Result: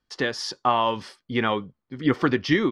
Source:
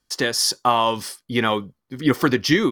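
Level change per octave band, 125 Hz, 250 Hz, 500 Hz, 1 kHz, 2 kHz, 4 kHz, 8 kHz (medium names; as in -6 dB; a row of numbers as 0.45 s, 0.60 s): -3.0 dB, -3.0 dB, -3.0 dB, -3.0 dB, -3.5 dB, -7.5 dB, -15.5 dB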